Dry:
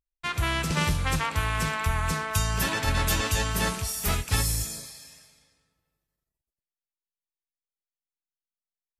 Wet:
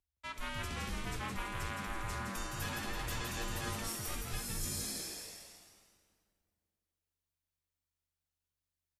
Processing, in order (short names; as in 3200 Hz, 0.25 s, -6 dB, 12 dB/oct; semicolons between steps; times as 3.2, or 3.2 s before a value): reverse; compressor 8:1, threshold -39 dBFS, peak gain reduction 19.5 dB; reverse; frequency-shifting echo 0.165 s, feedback 50%, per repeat +120 Hz, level -4 dB; frequency shift -84 Hz; gain +1 dB